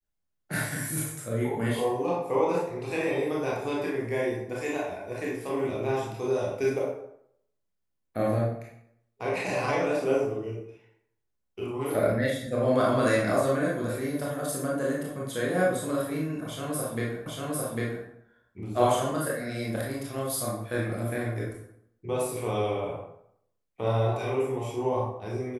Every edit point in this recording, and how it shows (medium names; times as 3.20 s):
17.26 s: repeat of the last 0.8 s